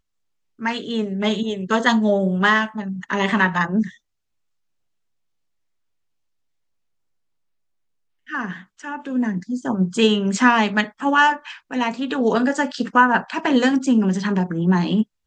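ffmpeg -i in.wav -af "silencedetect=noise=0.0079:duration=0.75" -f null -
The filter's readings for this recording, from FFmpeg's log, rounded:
silence_start: 3.95
silence_end: 8.27 | silence_duration: 4.32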